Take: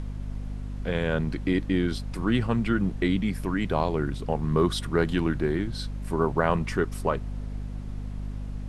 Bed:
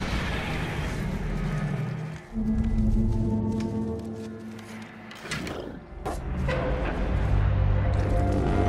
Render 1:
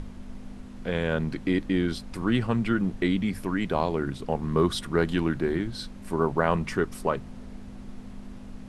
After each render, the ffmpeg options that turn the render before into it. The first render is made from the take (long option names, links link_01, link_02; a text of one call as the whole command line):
ffmpeg -i in.wav -af "bandreject=frequency=50:width_type=h:width=6,bandreject=frequency=100:width_type=h:width=6,bandreject=frequency=150:width_type=h:width=6" out.wav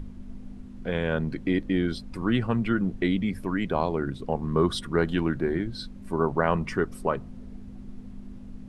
ffmpeg -i in.wav -af "afftdn=noise_reduction=9:noise_floor=-43" out.wav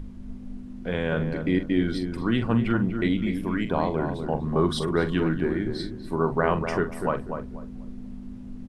ffmpeg -i in.wav -filter_complex "[0:a]asplit=2[link_01][link_02];[link_02]adelay=44,volume=-10dB[link_03];[link_01][link_03]amix=inputs=2:normalize=0,asplit=2[link_04][link_05];[link_05]adelay=244,lowpass=frequency=1300:poles=1,volume=-6dB,asplit=2[link_06][link_07];[link_07]adelay=244,lowpass=frequency=1300:poles=1,volume=0.28,asplit=2[link_08][link_09];[link_09]adelay=244,lowpass=frequency=1300:poles=1,volume=0.28,asplit=2[link_10][link_11];[link_11]adelay=244,lowpass=frequency=1300:poles=1,volume=0.28[link_12];[link_06][link_08][link_10][link_12]amix=inputs=4:normalize=0[link_13];[link_04][link_13]amix=inputs=2:normalize=0" out.wav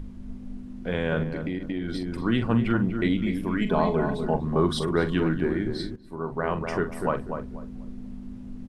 ffmpeg -i in.wav -filter_complex "[0:a]asettb=1/sr,asplit=3[link_01][link_02][link_03];[link_01]atrim=end=1.234[link_04];[link_02]atrim=start=1.23:end=2.25,asetpts=PTS-STARTPTS,afade=type=in:duration=0.004:curve=qsin,afade=type=out:start_time=1.016:duration=0.004:curve=qsin,acompressor=threshold=-25dB:ratio=10:attack=3.2:release=140:knee=1:detection=peak[link_05];[link_03]atrim=start=2.246[link_06];[link_04][link_05]acrossfade=duration=0.004:curve1=hsin:curve2=qsin[link_07];[link_07][link_06]acrossfade=duration=0.004:curve1=qsin:curve2=hsin,asettb=1/sr,asplit=3[link_08][link_09][link_10];[link_08]atrim=end=3.614[link_11];[link_09]atrim=start=3.61:end=4.37,asetpts=PTS-STARTPTS,afade=type=in:duration=0.004:curve=qsin,afade=type=out:start_time=0.756:duration=0.004:curve=qsin,aecho=1:1:4.7:0.75,atrim=end_sample=33516[link_12];[link_10]atrim=start=4.366[link_13];[link_11][link_12]acrossfade=duration=0.004:curve1=hsin:curve2=qsin[link_14];[link_14][link_13]acrossfade=duration=0.004:curve1=qsin:curve2=hsin,asplit=2[link_15][link_16];[link_15]atrim=end=5.96,asetpts=PTS-STARTPTS,afade=type=out:start_time=5.956:duration=0.004:curve=hsin:silence=0.188365[link_17];[link_16]atrim=start=5.96,asetpts=PTS-STARTPTS,afade=type=in:duration=1.02:silence=0.188365[link_18];[link_17][link_18]concat=n=2:v=0:a=1" out.wav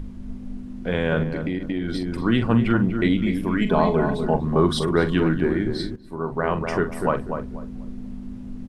ffmpeg -i in.wav -af "volume=4dB" out.wav